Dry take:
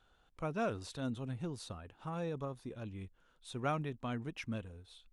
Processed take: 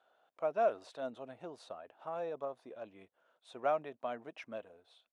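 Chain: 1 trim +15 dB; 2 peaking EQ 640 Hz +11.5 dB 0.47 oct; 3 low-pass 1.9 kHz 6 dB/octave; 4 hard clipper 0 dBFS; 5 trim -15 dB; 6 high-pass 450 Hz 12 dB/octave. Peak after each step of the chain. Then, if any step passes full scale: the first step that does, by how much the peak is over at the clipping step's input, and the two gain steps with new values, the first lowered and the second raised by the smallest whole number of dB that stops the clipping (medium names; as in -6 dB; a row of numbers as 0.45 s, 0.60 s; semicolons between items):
-8.5 dBFS, -4.0 dBFS, -4.5 dBFS, -4.5 dBFS, -19.5 dBFS, -20.5 dBFS; nothing clips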